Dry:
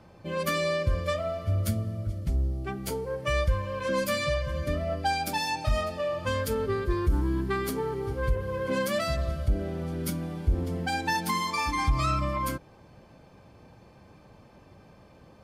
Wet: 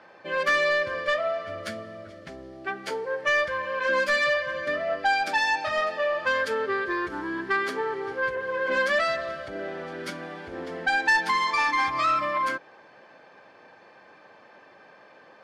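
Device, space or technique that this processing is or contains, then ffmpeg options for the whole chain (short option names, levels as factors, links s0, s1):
intercom: -af "highpass=480,lowpass=4300,equalizer=f=1700:t=o:w=0.38:g=10,asoftclip=type=tanh:threshold=0.0944,volume=1.88"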